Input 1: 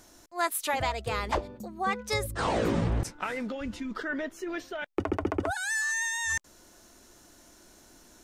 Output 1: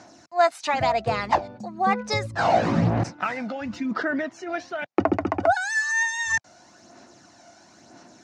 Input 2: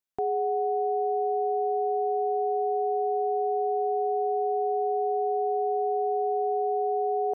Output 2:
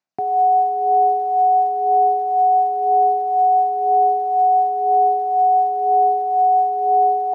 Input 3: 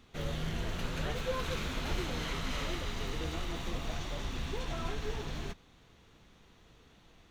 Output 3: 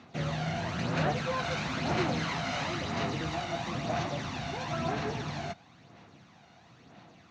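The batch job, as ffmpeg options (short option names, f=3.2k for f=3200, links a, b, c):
-af "highpass=f=110:w=0.5412,highpass=f=110:w=1.3066,equalizer=f=430:t=q:w=4:g=-7,equalizer=f=710:t=q:w=4:g=7,equalizer=f=3.3k:t=q:w=4:g=-7,lowpass=f=6.1k:w=0.5412,lowpass=f=6.1k:w=1.3066,aphaser=in_gain=1:out_gain=1:delay=1.4:decay=0.43:speed=1:type=sinusoidal,volume=5dB"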